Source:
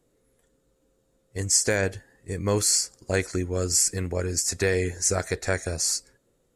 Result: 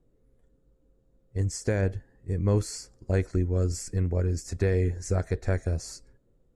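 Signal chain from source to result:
spectral tilt −3.5 dB per octave
level −7 dB

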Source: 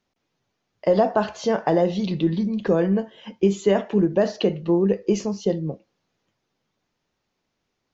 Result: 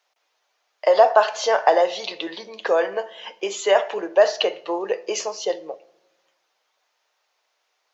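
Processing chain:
high-pass filter 580 Hz 24 dB per octave
convolution reverb RT60 1.0 s, pre-delay 6 ms, DRR 15 dB
level +8 dB

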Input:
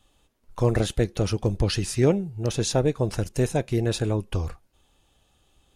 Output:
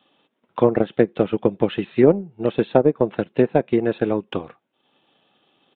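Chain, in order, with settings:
high-pass filter 180 Hz 24 dB per octave
treble cut that deepens with the level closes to 1,100 Hz, closed at −18.5 dBFS
downsampling to 8,000 Hz
transient designer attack +4 dB, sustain −7 dB
level +5.5 dB

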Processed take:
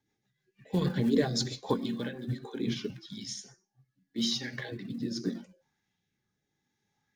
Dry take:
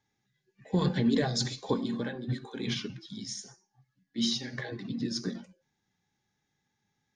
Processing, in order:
floating-point word with a short mantissa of 4 bits
rotating-speaker cabinet horn 6.3 Hz, later 0.8 Hz, at 0:01.91
auto-filter bell 0.75 Hz 290–3,100 Hz +7 dB

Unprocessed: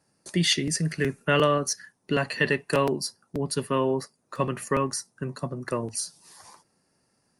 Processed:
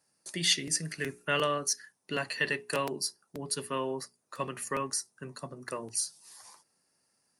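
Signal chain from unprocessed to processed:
spectral tilt +2 dB per octave
mains-hum notches 60/120/180/240/300/360/420 Hz
level −6.5 dB

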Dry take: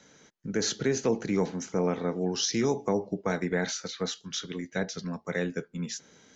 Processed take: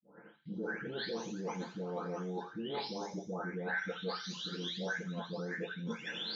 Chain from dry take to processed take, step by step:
every frequency bin delayed by itself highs late, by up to 726 ms
downward expander −55 dBFS
low-shelf EQ 410 Hz +7.5 dB
brickwall limiter −24.5 dBFS, peak gain reduction 12 dB
reversed playback
downward compressor 8 to 1, threshold −46 dBFS, peak gain reduction 17.5 dB
reversed playback
loudspeaker in its box 220–4,400 Hz, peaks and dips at 290 Hz −3 dB, 850 Hz +4 dB, 1,500 Hz +6 dB, 2,200 Hz −6 dB, 3,200 Hz +5 dB
delay with a high-pass on its return 85 ms, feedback 36%, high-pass 3,300 Hz, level −6 dB
on a send at −9 dB: convolution reverb RT60 0.25 s, pre-delay 4 ms
on the sum: level +10 dB

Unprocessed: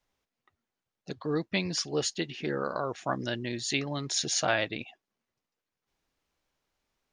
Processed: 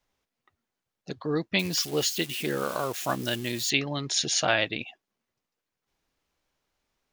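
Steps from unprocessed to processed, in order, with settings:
0:01.59–0:03.70: spike at every zero crossing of −31 dBFS
dynamic equaliser 3,000 Hz, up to +5 dB, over −47 dBFS, Q 1.8
level +2 dB

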